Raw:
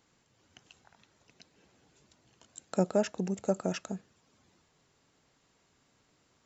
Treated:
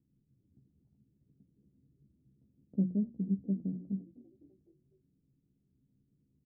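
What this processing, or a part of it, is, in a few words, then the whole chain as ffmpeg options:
the neighbour's flat through the wall: -filter_complex "[0:a]bandreject=frequency=60:width_type=h:width=6,bandreject=frequency=120:width_type=h:width=6,bandreject=frequency=180:width_type=h:width=6,bandreject=frequency=240:width_type=h:width=6,bandreject=frequency=300:width_type=h:width=6,bandreject=frequency=360:width_type=h:width=6,asettb=1/sr,asplit=3[link_01][link_02][link_03];[link_01]atrim=end=2.824[link_04];[link_02]atrim=start=2.82:end=3.75,asetpts=PTS-STARTPTS,afade=type=in:duration=0.004:curve=qsin,afade=type=out:start_time=0.926:duration=0.004:curve=qsin,equalizer=frequency=840:width_type=o:width=2.4:gain=-4[link_05];[link_03]atrim=start=3.746[link_06];[link_04][link_05]acrossfade=duration=0.004:curve1=hsin:curve2=qsin[link_07];[link_07][link_06]acrossfade=duration=0.004:curve1=qsin:curve2=hsin,lowpass=frequency=280:width=0.5412,lowpass=frequency=280:width=1.3066,equalizer=frequency=140:width_type=o:width=0.77:gain=3.5,asplit=2[link_08][link_09];[link_09]adelay=15,volume=-6.5dB[link_10];[link_08][link_10]amix=inputs=2:normalize=0,asplit=5[link_11][link_12][link_13][link_14][link_15];[link_12]adelay=252,afreqshift=46,volume=-21.5dB[link_16];[link_13]adelay=504,afreqshift=92,volume=-27dB[link_17];[link_14]adelay=756,afreqshift=138,volume=-32.5dB[link_18];[link_15]adelay=1008,afreqshift=184,volume=-38dB[link_19];[link_11][link_16][link_17][link_18][link_19]amix=inputs=5:normalize=0"

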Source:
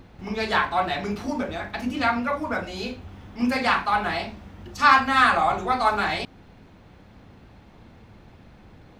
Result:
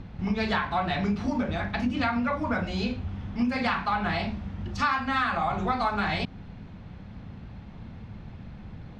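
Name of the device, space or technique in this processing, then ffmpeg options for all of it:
jukebox: -af "lowpass=5100,lowshelf=frequency=250:width_type=q:width=1.5:gain=6.5,acompressor=threshold=-24dB:ratio=6,volume=1dB"

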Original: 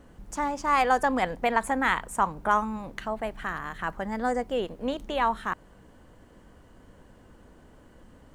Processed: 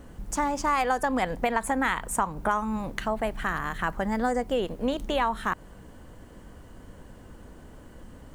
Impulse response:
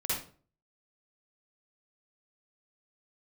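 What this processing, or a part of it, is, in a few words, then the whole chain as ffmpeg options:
ASMR close-microphone chain: -af "lowshelf=frequency=180:gain=4,acompressor=threshold=-26dB:ratio=5,highshelf=frequency=7800:gain=6.5,volume=4dB"

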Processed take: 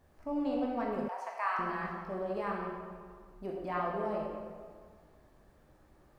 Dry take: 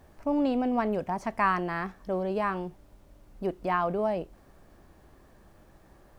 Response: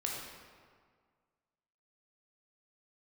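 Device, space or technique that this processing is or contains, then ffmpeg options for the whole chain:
stairwell: -filter_complex "[1:a]atrim=start_sample=2205[link_01];[0:a][link_01]afir=irnorm=-1:irlink=0,asettb=1/sr,asplit=3[link_02][link_03][link_04];[link_02]atrim=end=1.084[link_05];[link_03]atrim=start=1.08:end=1.59,asetpts=PTS-STARTPTS,afade=type=in:duration=0.004:curve=qsin,afade=type=out:start_time=0.506:duration=0.004:curve=qsin,highpass=frequency=600:width=0.5412,highpass=frequency=600:width=1.3066[link_06];[link_04]atrim=start=1.586[link_07];[link_05][link_06]acrossfade=duration=0.004:curve1=hsin:curve2=qsin[link_08];[link_08][link_07]acrossfade=duration=0.004:curve1=qsin:curve2=hsin,volume=-9dB"

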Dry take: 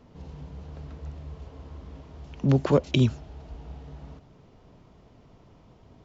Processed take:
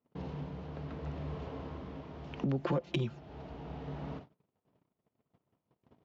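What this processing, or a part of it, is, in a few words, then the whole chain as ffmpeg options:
AM radio: -filter_complex "[0:a]agate=range=-36dB:threshold=-49dB:ratio=16:detection=peak,asettb=1/sr,asplit=3[link_01][link_02][link_03];[link_01]atrim=end=2.624[link_04];[link_02]atrim=start=2.62:end=3.19,asetpts=PTS-STARTPTS,afade=type=in:duration=0.004:curve=qsin,afade=type=out:start_time=0.566:duration=0.004:curve=qsin,aecho=1:1:5.8:0.77,atrim=end_sample=25137[link_05];[link_03]atrim=start=3.186[link_06];[link_04][link_05]acrossfade=duration=0.004:curve1=hsin:curve2=qsin[link_07];[link_07][link_06]acrossfade=duration=0.004:curve1=qsin:curve2=hsin,highpass=130,lowpass=3400,acompressor=threshold=-36dB:ratio=6,asoftclip=type=tanh:threshold=-27dB,tremolo=f=0.72:d=0.37,volume=7dB"

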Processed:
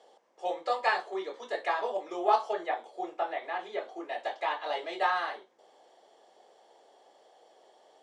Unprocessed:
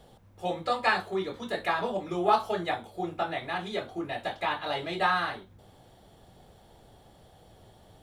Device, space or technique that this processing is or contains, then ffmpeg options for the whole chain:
phone speaker on a table: -filter_complex "[0:a]asettb=1/sr,asplit=3[link_01][link_02][link_03];[link_01]atrim=end=2.534[link_04];[link_02]atrim=start=2.53:end=4,asetpts=PTS-STARTPTS,afade=type=in:duration=0.004:curve=qsin,afade=type=out:start_time=1.466:duration=0.004:curve=qsin,acrossover=split=3100[link_05][link_06];[link_06]acompressor=threshold=-54dB:ratio=4:attack=1:release=60[link_07];[link_05][link_07]amix=inputs=2:normalize=0[link_08];[link_03]atrim=start=3.996[link_09];[link_04][link_08]acrossfade=duration=0.004:curve1=hsin:curve2=qsin[link_10];[link_10][link_09]acrossfade=duration=0.004:curve1=qsin:curve2=hsin,highpass=frequency=410:width=0.5412,highpass=frequency=410:width=1.3066,equalizer=frequency=1400:width_type=q:width=4:gain=-7,equalizer=frequency=2500:width_type=q:width=4:gain=-5,equalizer=frequency=3800:width_type=q:width=4:gain=-7,lowpass=frequency=7300:width=0.5412,lowpass=frequency=7300:width=1.3066"

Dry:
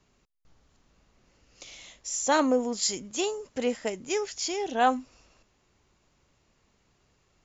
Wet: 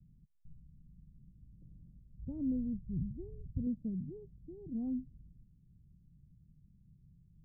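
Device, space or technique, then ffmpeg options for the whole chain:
the neighbour's flat through the wall: -filter_complex "[0:a]lowpass=frequency=180:width=0.5412,lowpass=frequency=180:width=1.3066,equalizer=frequency=160:width_type=o:width=0.55:gain=8,asettb=1/sr,asplit=3[link_01][link_02][link_03];[link_01]atrim=end=2.184[link_04];[link_02]atrim=start=2.18:end=3.67,asetpts=PTS-STARTPTS,afade=type=in:duration=0.004:curve=qsin,afade=type=out:start_time=1.486:duration=0.004:curve=qsin,lowshelf=frequency=140:width_type=q:width=1.5:gain=10.5[link_05];[link_03]atrim=start=3.666[link_06];[link_04][link_05]acrossfade=duration=0.004:curve1=hsin:curve2=qsin[link_07];[link_07][link_06]acrossfade=duration=0.004:curve1=qsin:curve2=hsin,volume=7.5dB"

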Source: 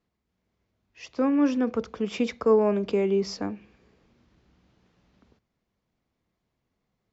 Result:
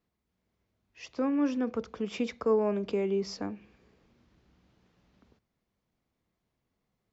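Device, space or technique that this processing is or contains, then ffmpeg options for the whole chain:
parallel compression: -filter_complex "[0:a]asplit=2[link_01][link_02];[link_02]acompressor=threshold=-35dB:ratio=6,volume=-4.5dB[link_03];[link_01][link_03]amix=inputs=2:normalize=0,volume=-6.5dB"

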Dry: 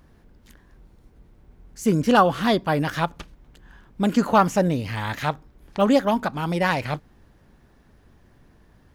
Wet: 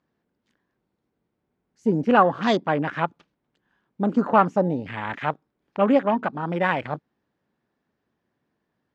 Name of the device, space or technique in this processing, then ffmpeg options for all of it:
over-cleaned archive recording: -af "highpass=180,lowpass=5200,afwtdn=0.0251"

